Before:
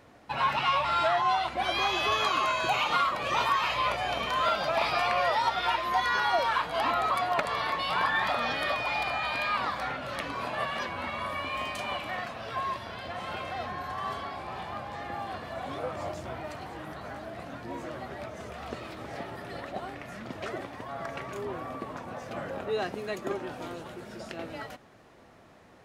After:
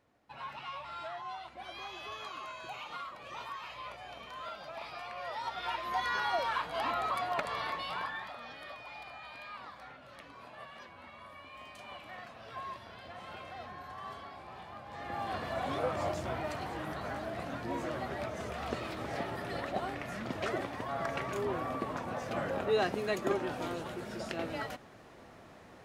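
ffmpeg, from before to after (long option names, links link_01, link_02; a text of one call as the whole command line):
ffmpeg -i in.wav -af "volume=12.5dB,afade=type=in:start_time=5.15:duration=0.9:silence=0.298538,afade=type=out:start_time=7.66:duration=0.64:silence=0.281838,afade=type=in:start_time=11.53:duration=1.06:silence=0.446684,afade=type=in:start_time=14.84:duration=0.58:silence=0.266073" out.wav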